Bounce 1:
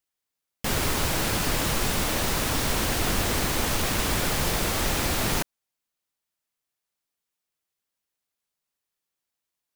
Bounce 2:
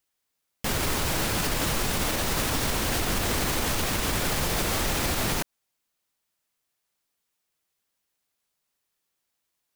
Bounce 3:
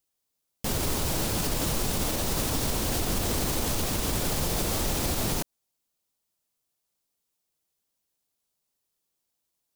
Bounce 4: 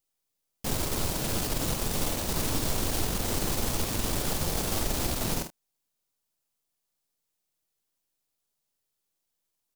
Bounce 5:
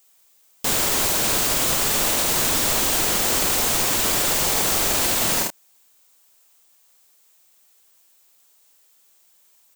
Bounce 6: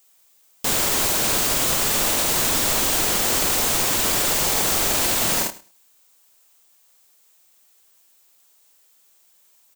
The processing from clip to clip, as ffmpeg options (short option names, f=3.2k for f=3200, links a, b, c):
-af "alimiter=limit=-22dB:level=0:latency=1:release=118,volume=5.5dB"
-af "equalizer=f=1.8k:w=0.76:g=-8"
-af "aeval=exprs='if(lt(val(0),0),0.447*val(0),val(0))':c=same,aecho=1:1:48|78:0.422|0.15"
-filter_complex "[0:a]aexciter=amount=2.3:drive=2.1:freq=6.8k,asplit=2[a][b];[b]highpass=f=720:p=1,volume=28dB,asoftclip=type=tanh:threshold=-10dB[c];[a][c]amix=inputs=2:normalize=0,lowpass=f=6.5k:p=1,volume=-6dB"
-af "aecho=1:1:104|208:0.119|0.0178"